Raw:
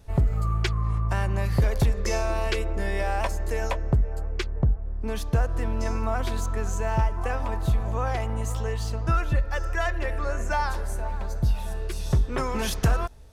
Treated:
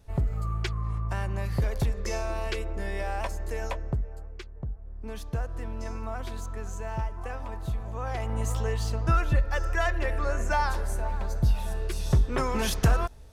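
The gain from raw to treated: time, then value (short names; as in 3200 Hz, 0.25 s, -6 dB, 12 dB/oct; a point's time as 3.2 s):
3.77 s -5 dB
4.53 s -14.5 dB
5.07 s -8 dB
7.93 s -8 dB
8.42 s 0 dB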